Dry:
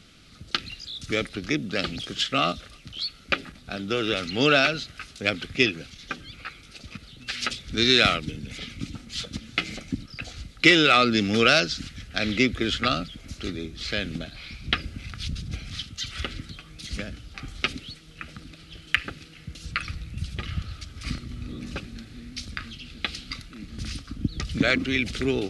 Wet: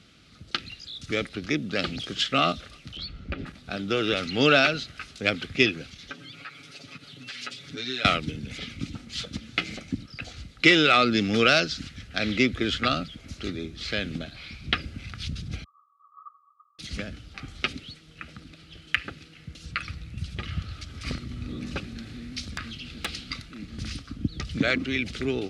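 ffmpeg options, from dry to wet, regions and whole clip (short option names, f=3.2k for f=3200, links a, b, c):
-filter_complex "[0:a]asettb=1/sr,asplit=3[a][b][c];[a]atrim=end=2.974[d];[b]atrim=start=2.97:end=3.46,asetpts=PTS-STARTPTS,afade=t=in:d=0.004:c=qsin,afade=t=out:st=0.486:d=0.004:c=qsin,aemphasis=mode=reproduction:type=riaa,acompressor=threshold=-27dB:ratio=12:attack=3.2:release=140:knee=1:detection=peak[e];[c]atrim=start=3.456[f];[d][e]acrossfade=d=0.004:c1=hsin:c2=qsin[g];[g][f]acrossfade=d=0.004:c1=qsin:c2=hsin,asettb=1/sr,asplit=3[h][i][j];[h]atrim=end=6.104[k];[i]atrim=start=6.1:end=8.05,asetpts=PTS-STARTPTS,afade=t=in:d=0.004:c=qsin,afade=t=out:st=1.946:d=0.004:c=qsin,highpass=140,acompressor=threshold=-44dB:ratio=2:attack=3.2:release=140:knee=1:detection=peak,aecho=1:1:7.1:0.9,atrim=end_sample=85995[l];[j]atrim=start=8.046[m];[k][l]acrossfade=d=0.004:c1=hsin:c2=qsin[n];[n][m]acrossfade=d=0.004:c1=qsin:c2=hsin,asettb=1/sr,asplit=3[o][p][q];[o]atrim=end=15.644[r];[p]atrim=start=15.64:end=16.79,asetpts=PTS-STARTPTS,afade=t=in:d=0.004:c=qsin,afade=t=out:st=1.146:d=0.004:c=qsin,afreqshift=-210,asuperpass=centerf=1200:order=20:qfactor=6.9,acompressor=mode=upward:threshold=-60dB:ratio=2.5:attack=3.2:release=140:knee=2.83:detection=peak[s];[q]atrim=start=16.786[t];[r][s]acrossfade=d=0.004:c1=hsin:c2=qsin[u];[u][t]acrossfade=d=0.004:c1=qsin:c2=hsin,asettb=1/sr,asplit=3[v][w][x];[v]atrim=end=20.694[y];[w]atrim=start=20.69:end=23.15,asetpts=PTS-STARTPTS,afade=t=in:d=0.004:c=qsin,afade=t=out:st=2.456:d=0.004:c=qsin,acompressor=mode=upward:threshold=-35dB:ratio=2.5:attack=3.2:release=140:knee=2.83:detection=peak,aeval=exprs='0.0891*(abs(mod(val(0)/0.0891+3,4)-2)-1)':c=same[z];[x]atrim=start=23.146[aa];[y][z]acrossfade=d=0.004:c1=hsin:c2=qsin[ab];[ab][aa]acrossfade=d=0.004:c1=qsin:c2=hsin,highpass=53,highshelf=f=9.4k:g=-9,dynaudnorm=f=250:g=13:m=4dB,volume=-2dB"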